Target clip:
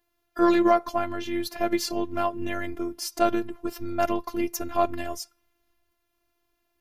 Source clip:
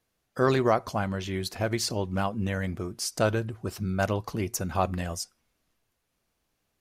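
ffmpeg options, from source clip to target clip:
ffmpeg -i in.wav -af "highshelf=frequency=6000:gain=-11,aeval=exprs='0.299*(cos(1*acos(clip(val(0)/0.299,-1,1)))-cos(1*PI/2))+0.00237*(cos(8*acos(clip(val(0)/0.299,-1,1)))-cos(8*PI/2))':channel_layout=same,aexciter=amount=3.4:drive=6:freq=11000,afftfilt=real='hypot(re,im)*cos(PI*b)':imag='0':win_size=512:overlap=0.75,volume=6.5dB" out.wav

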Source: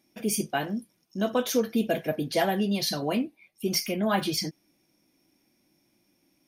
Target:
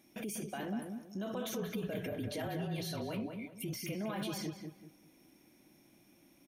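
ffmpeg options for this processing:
ffmpeg -i in.wav -filter_complex "[0:a]asettb=1/sr,asplit=3[link_01][link_02][link_03];[link_01]atrim=end=1.494[link_04];[link_02]atrim=start=1.49:end=3.95,asetpts=PTS-STARTPTS,afade=type=in:duration=0.004:curve=qsin,afade=type=out:start_time=2.456:duration=0.004:curve=qsin,afreqshift=-35[link_05];[link_03]atrim=start=3.946[link_06];[link_04][link_05]acrossfade=duration=0.004:curve1=hsin:curve2=qsin[link_07];[link_07][link_06]acrossfade=duration=0.004:curve1=qsin:curve2=hsin,alimiter=level_in=12dB:limit=-24dB:level=0:latency=1:release=93,volume=-12dB,equalizer=frequency=4900:width_type=o:width=0.25:gain=-10,asplit=2[link_08][link_09];[link_09]adelay=193,lowpass=frequency=2000:poles=1,volume=-5dB,asplit=2[link_10][link_11];[link_11]adelay=193,lowpass=frequency=2000:poles=1,volume=0.32,asplit=2[link_12][link_13];[link_13]adelay=193,lowpass=frequency=2000:poles=1,volume=0.32,asplit=2[link_14][link_15];[link_15]adelay=193,lowpass=frequency=2000:poles=1,volume=0.32[link_16];[link_08][link_10][link_12][link_14][link_16]amix=inputs=5:normalize=0,volume=4dB" out.wav

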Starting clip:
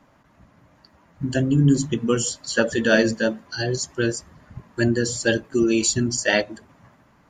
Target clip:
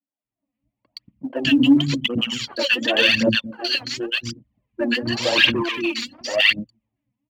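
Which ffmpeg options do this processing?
ffmpeg -i in.wav -filter_complex "[0:a]asettb=1/sr,asplit=3[link_01][link_02][link_03];[link_01]atrim=end=5.104[link_04];[link_02]atrim=start=5.1:end=5.69,asetpts=PTS-STARTPTS,afade=type=in:duration=0.004:curve=qsin,afade=type=out:start_time=0.586:duration=0.004:curve=qsin,asplit=2[link_05][link_06];[link_06]highpass=frequency=720:poles=1,volume=31dB,asoftclip=type=tanh:threshold=-5.5dB[link_07];[link_05][link_07]amix=inputs=2:normalize=0,lowpass=frequency=1900:poles=1,volume=-6dB[link_08];[link_03]atrim=start=5.686[link_09];[link_04][link_08]acrossfade=duration=0.004:curve1=hsin:curve2=qsin[link_10];[link_10][link_09]acrossfade=duration=0.004:curve1=qsin:curve2=hsin,aexciter=amount=7:drive=8.5:freq=2300,agate=range=-33dB:threshold=-40dB:ratio=3:detection=peak,dynaudnorm=framelen=220:gausssize=3:maxgain=7.5dB,anlmdn=2510,asoftclip=type=hard:threshold=-13dB,highpass=140,equalizer=frequency=160:width_type=q:width=4:gain=-5,equalizer=frequency=270:width_type=q:width=4:gain=4,equalizer=frequency=410:width_type=q:width=4:gain=-9,equalizer=frequency=1500:width_type=q:width=4:gain=-4,lowpass=frequency=2900:width=0.5412,lowpass=frequency=2900:width=1.3066,acrossover=split=270|1200[link_11][link_12][link_13];[link_13]adelay=120[link_14];[link_11]adelay=230[link_15];[link_15][link_12][link_14]amix=inputs=3:normalize=0,aphaser=in_gain=1:out_gain=1:delay=4.2:decay=0.66:speed=0.91:type=triangular,volume=6dB" out.wav

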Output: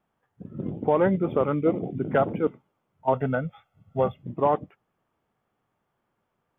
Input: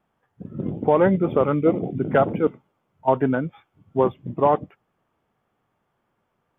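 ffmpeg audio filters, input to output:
ffmpeg -i in.wav -filter_complex "[0:a]asettb=1/sr,asplit=3[link_01][link_02][link_03];[link_01]atrim=end=3.134[link_04];[link_02]atrim=start=3.13:end=4.23,asetpts=PTS-STARTPTS,afade=type=in:duration=0.004:curve=qsin,afade=type=out:start_time=1.096:duration=0.004:curve=qsin,aecho=1:1:1.5:0.79,atrim=end_sample=48510[link_05];[link_03]atrim=start=4.226[link_06];[link_04][link_05]acrossfade=duration=0.004:curve1=hsin:curve2=qsin[link_07];[link_07][link_06]acrossfade=duration=0.004:curve1=qsin:curve2=hsin,volume=-4dB" out.wav

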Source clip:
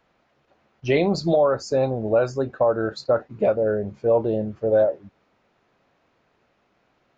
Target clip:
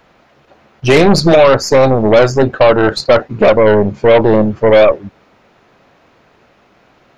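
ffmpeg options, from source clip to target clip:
ffmpeg -i in.wav -af "aeval=exprs='0.335*(cos(1*acos(clip(val(0)/0.335,-1,1)))-cos(1*PI/2))+0.0376*(cos(6*acos(clip(val(0)/0.335,-1,1)))-cos(6*PI/2))':channel_layout=same,apsyclip=17.5dB,volume=-1.5dB" out.wav

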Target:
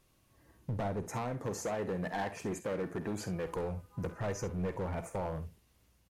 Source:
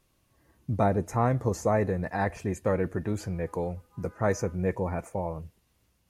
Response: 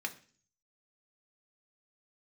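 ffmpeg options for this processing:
-filter_complex "[0:a]asettb=1/sr,asplit=3[link_01][link_02][link_03];[link_01]atrim=end=1.034[link_04];[link_02]atrim=start=1.03:end=3.47,asetpts=PTS-STARTPTS,afade=type=in:duration=0.004:curve=qsin,afade=type=out:start_time=2.436:duration=0.004:curve=qsin,highpass=160[link_05];[link_03]atrim=start=3.466[link_06];[link_04][link_05]acrossfade=duration=0.004:curve1=hsin:curve2=qsin[link_07];[link_07][link_06]acrossfade=duration=0.004:curve1=qsin:curve2=hsin,acompressor=threshold=-29dB:ratio=6,volume=31dB,asoftclip=hard,volume=-31dB,aecho=1:1:49|67:0.211|0.188"

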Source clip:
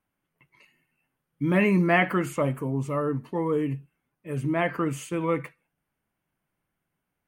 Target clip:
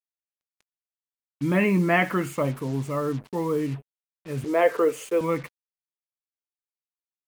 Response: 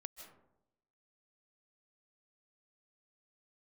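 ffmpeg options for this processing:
-filter_complex "[0:a]asettb=1/sr,asplit=3[link_01][link_02][link_03];[link_01]atrim=end=4.444[link_04];[link_02]atrim=start=4.44:end=5.21,asetpts=PTS-STARTPTS,afade=type=in:duration=0.004:curve=qsin,afade=type=out:start_time=0.766:duration=0.004:curve=qsin,highpass=frequency=460:width_type=q:width=5.3[link_05];[link_03]atrim=start=5.206[link_06];[link_04][link_05]acrossfade=duration=0.004:curve1=hsin:curve2=qsin[link_07];[link_07][link_06]acrossfade=duration=0.004:curve1=qsin:curve2=hsin,acrusher=bits=6:mix=0:aa=0.5"

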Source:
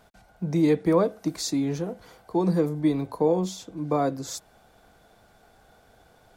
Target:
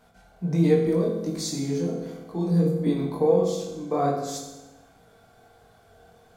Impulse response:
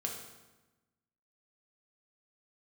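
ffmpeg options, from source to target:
-filter_complex "[0:a]asettb=1/sr,asplit=3[link_01][link_02][link_03];[link_01]atrim=end=0.854[link_04];[link_02]atrim=start=0.85:end=2.87,asetpts=PTS-STARTPTS,afade=type=in:duration=0.004:curve=qsin,afade=type=out:start_time=2.016:duration=0.004:curve=qsin,acrossover=split=370|3000[link_05][link_06][link_07];[link_06]acompressor=threshold=-36dB:ratio=6[link_08];[link_05][link_08][link_07]amix=inputs=3:normalize=0[link_09];[link_03]atrim=start=2.866[link_10];[link_04][link_09]acrossfade=duration=0.004:curve1=hsin:curve2=qsin[link_11];[link_11][link_10]acrossfade=duration=0.004:curve1=qsin:curve2=hsin,flanger=delay=17:depth=7:speed=1.4[link_12];[1:a]atrim=start_sample=2205[link_13];[link_12][link_13]afir=irnorm=-1:irlink=0,volume=2dB"

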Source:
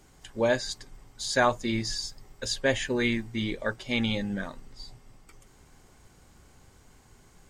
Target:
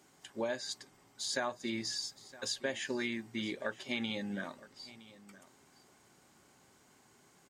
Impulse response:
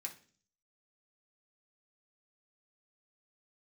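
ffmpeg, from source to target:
-filter_complex "[0:a]highpass=200,bandreject=frequency=480:width=12,acompressor=threshold=-28dB:ratio=6,asplit=2[link_01][link_02];[link_02]aecho=0:1:965:0.112[link_03];[link_01][link_03]amix=inputs=2:normalize=0,volume=-4dB"

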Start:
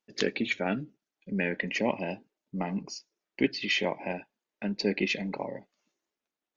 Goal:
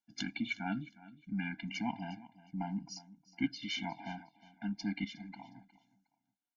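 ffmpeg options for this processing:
ffmpeg -i in.wav -filter_complex "[0:a]asettb=1/sr,asplit=3[link_01][link_02][link_03];[link_01]atrim=end=5.044[link_04];[link_02]atrim=start=5.04:end=5.56,asetpts=PTS-STARTPTS,afade=type=in:duration=0.004:curve=qsin,afade=type=out:start_time=0.516:duration=0.004:curve=qsin,acrossover=split=1800|4600[link_05][link_06][link_07];[link_05]acompressor=threshold=-40dB:ratio=4[link_08];[link_06]acompressor=threshold=-38dB:ratio=4[link_09];[link_07]acompressor=threshold=-51dB:ratio=4[link_10];[link_08][link_09][link_10]amix=inputs=3:normalize=0[link_11];[link_03]atrim=start=5.556[link_12];[link_04][link_11]acrossfade=duration=0.004:curve1=hsin:curve2=qsin[link_13];[link_13][link_12]acrossfade=duration=0.004:curve1=qsin:curve2=hsin,aecho=1:1:361|722:0.112|0.0303,afftfilt=real='re*eq(mod(floor(b*sr/1024/340),2),0)':imag='im*eq(mod(floor(b*sr/1024/340),2),0)':win_size=1024:overlap=0.75,volume=-5dB" out.wav

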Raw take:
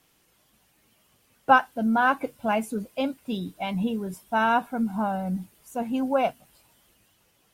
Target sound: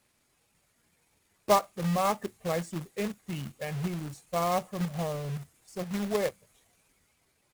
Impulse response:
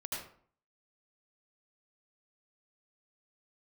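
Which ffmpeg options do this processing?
-af "asetrate=34006,aresample=44100,atempo=1.29684,acrusher=bits=2:mode=log:mix=0:aa=0.000001,volume=-6dB"

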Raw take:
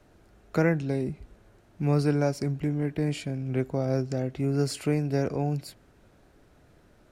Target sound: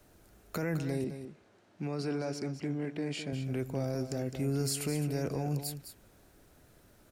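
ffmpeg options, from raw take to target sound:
ffmpeg -i in.wav -filter_complex "[0:a]aemphasis=mode=production:type=50fm,alimiter=limit=-21dB:level=0:latency=1:release=11,asettb=1/sr,asplit=3[link_01][link_02][link_03];[link_01]atrim=end=1.044[link_04];[link_02]atrim=start=1.04:end=3.33,asetpts=PTS-STARTPTS,afade=type=in:duration=0.004:curve=qsin,afade=type=out:start_time=2.286:duration=0.004:curve=qsin,highpass=190,lowpass=4800[link_05];[link_03]atrim=start=3.326[link_06];[link_04][link_05]acrossfade=duration=0.004:curve1=hsin:curve2=qsin[link_07];[link_07][link_06]acrossfade=duration=0.004:curve1=qsin:curve2=hsin,aecho=1:1:209:0.316,volume=-3dB" out.wav

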